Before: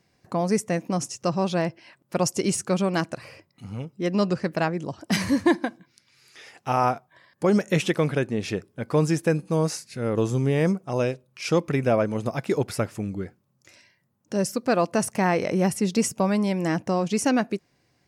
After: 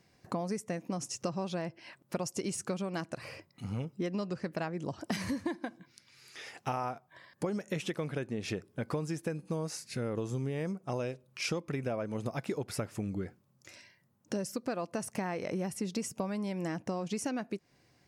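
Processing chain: compressor 12:1, threshold -31 dBFS, peak gain reduction 17.5 dB

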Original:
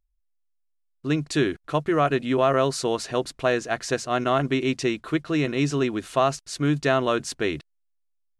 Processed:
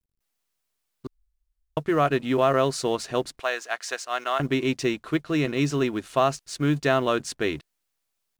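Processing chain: G.711 law mismatch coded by A; 1.07–1.77 room tone; 3.4–4.4 HPF 790 Hz 12 dB/oct

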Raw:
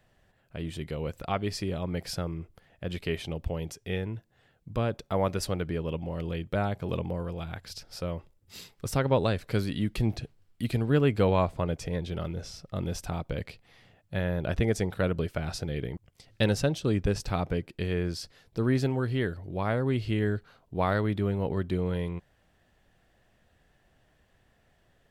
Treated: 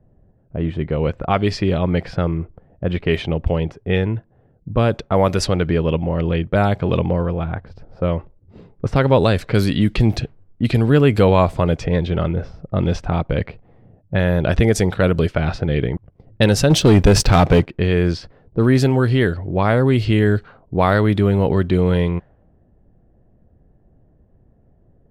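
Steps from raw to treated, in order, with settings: low-pass opened by the level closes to 380 Hz, open at -23.5 dBFS; in parallel at +1.5 dB: limiter -22 dBFS, peak gain reduction 11 dB; 16.7–17.67 on the sum: sample leveller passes 2; gain +7 dB

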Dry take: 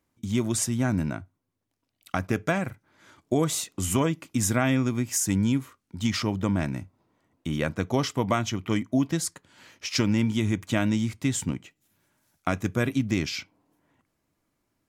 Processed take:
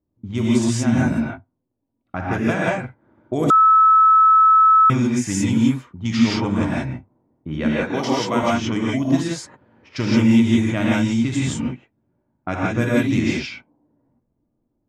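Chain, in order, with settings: low-pass opened by the level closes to 480 Hz, open at -19 dBFS; 7.65–8.43 HPF 190 Hz 12 dB/oct; non-linear reverb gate 0.2 s rising, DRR -6 dB; 3.5–4.9 bleep 1300 Hz -9 dBFS

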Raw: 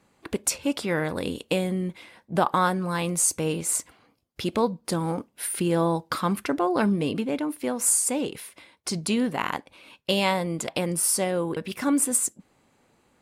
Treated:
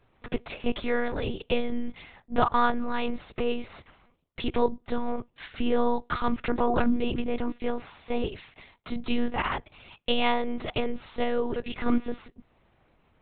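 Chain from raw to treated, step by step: monotone LPC vocoder at 8 kHz 240 Hz

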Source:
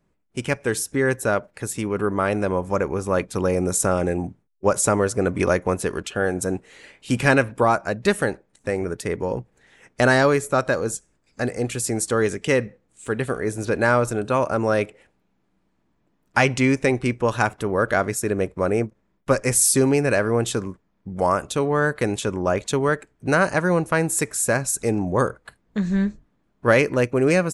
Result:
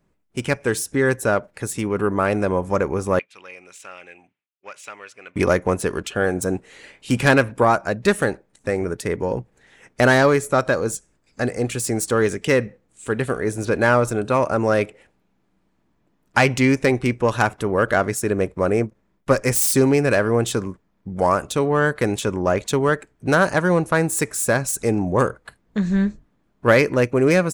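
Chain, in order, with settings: self-modulated delay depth 0.061 ms; 3.19–5.36 band-pass 2600 Hz, Q 3.7; gain +2 dB

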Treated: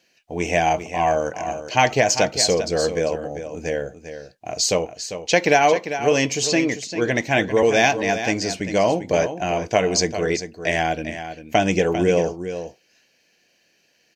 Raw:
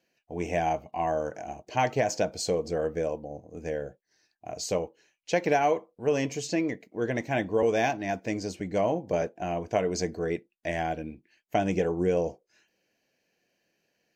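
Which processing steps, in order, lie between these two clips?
bell 4400 Hz +9 dB 2.7 oct; echo 0.397 s -10.5 dB; gain +6.5 dB

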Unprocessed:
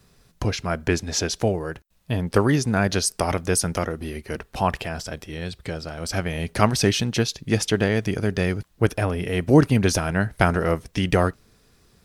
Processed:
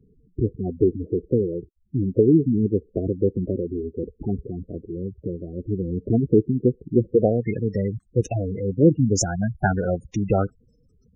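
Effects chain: varispeed +8%; low-pass sweep 380 Hz -> 8100 Hz, 7.14–7.76; spectral gate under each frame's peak -10 dB strong

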